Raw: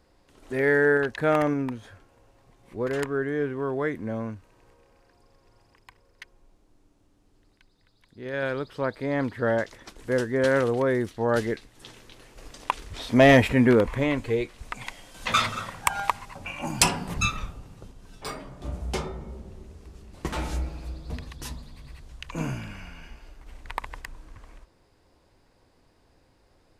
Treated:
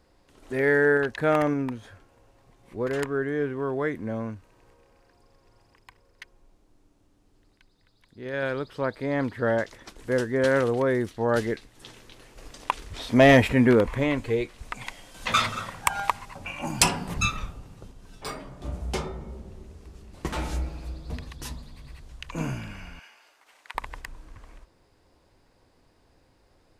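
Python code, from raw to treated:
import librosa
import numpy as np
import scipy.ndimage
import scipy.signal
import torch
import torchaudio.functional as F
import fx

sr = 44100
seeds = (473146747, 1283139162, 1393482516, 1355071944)

y = fx.highpass(x, sr, hz=800.0, slope=12, at=(22.99, 23.75))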